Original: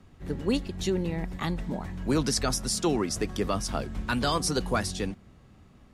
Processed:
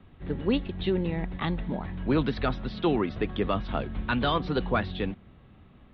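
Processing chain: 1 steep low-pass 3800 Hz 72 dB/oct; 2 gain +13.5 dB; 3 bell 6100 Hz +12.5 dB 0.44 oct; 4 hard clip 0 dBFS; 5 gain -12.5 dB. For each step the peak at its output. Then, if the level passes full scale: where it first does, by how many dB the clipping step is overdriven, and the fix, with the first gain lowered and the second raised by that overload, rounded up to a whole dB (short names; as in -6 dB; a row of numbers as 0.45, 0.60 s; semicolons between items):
-15.0, -1.5, -1.5, -1.5, -14.0 dBFS; no overload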